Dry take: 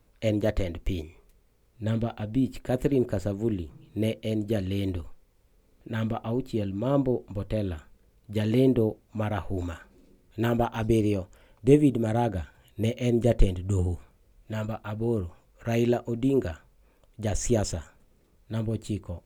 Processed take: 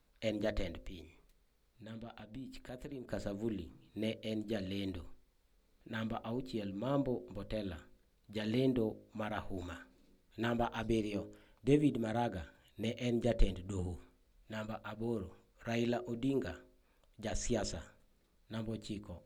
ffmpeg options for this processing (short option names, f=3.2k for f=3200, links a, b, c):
-filter_complex "[0:a]asettb=1/sr,asplit=3[a][b][c];[a]atrim=end=0.854[d];[b]atrim=start=0.85:end=3.08,asetpts=PTS-STARTPTS,afade=t=in:d=0.004:c=qsin,afade=t=out:st=2.226:d=0.004:c=qsin,acompressor=threshold=-40dB:ratio=2:attack=3.2:release=140:knee=1:detection=peak[e];[c]atrim=start=3.076[f];[d][e]acrossfade=d=0.004:c1=hsin:c2=qsin[g];[g][f]acrossfade=d=0.004:c1=qsin:c2=hsin,equalizer=f=100:t=o:w=0.67:g=-8,equalizer=f=400:t=o:w=0.67:g=-3,equalizer=f=1.6k:t=o:w=0.67:g=3,equalizer=f=4k:t=o:w=0.67:g=6,acrossover=split=8100[h][i];[i]acompressor=threshold=-58dB:ratio=4:attack=1:release=60[j];[h][j]amix=inputs=2:normalize=0,bandreject=f=52.05:t=h:w=4,bandreject=f=104.1:t=h:w=4,bandreject=f=156.15:t=h:w=4,bandreject=f=208.2:t=h:w=4,bandreject=f=260.25:t=h:w=4,bandreject=f=312.3:t=h:w=4,bandreject=f=364.35:t=h:w=4,bandreject=f=416.4:t=h:w=4,bandreject=f=468.45:t=h:w=4,bandreject=f=520.5:t=h:w=4,bandreject=f=572.55:t=h:w=4,bandreject=f=624.6:t=h:w=4,volume=-8dB"